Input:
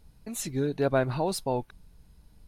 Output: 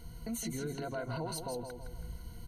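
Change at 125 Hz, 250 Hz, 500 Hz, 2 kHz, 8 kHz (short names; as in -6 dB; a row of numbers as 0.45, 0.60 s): -8.0, -8.0, -11.5, -9.0, -4.5 dB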